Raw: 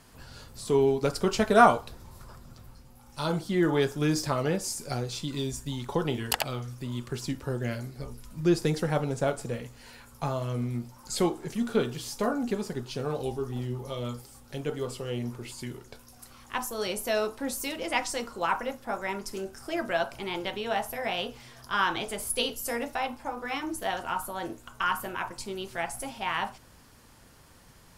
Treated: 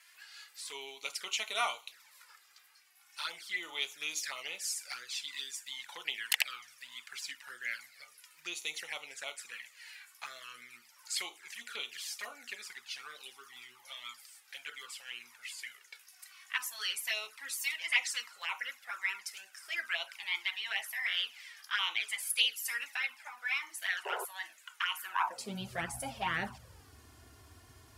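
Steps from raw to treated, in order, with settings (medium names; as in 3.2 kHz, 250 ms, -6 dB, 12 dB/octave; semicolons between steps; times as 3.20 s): touch-sensitive flanger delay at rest 3.1 ms, full sweep at -23.5 dBFS; high-pass sweep 2 kHz -> 79 Hz, 25.04–25.73 s; painted sound noise, 24.05–24.25 s, 370–1100 Hz -40 dBFS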